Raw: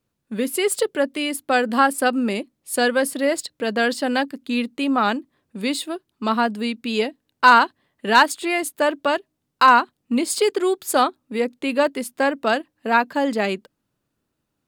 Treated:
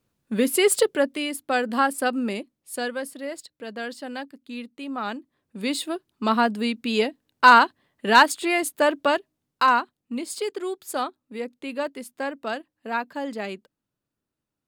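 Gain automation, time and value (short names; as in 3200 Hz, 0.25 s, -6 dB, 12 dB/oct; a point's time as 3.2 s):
0.78 s +2 dB
1.31 s -4.5 dB
2.29 s -4.5 dB
3.17 s -12.5 dB
4.84 s -12.5 dB
5.9 s -0.5 dB
9.08 s -0.5 dB
10.13 s -9.5 dB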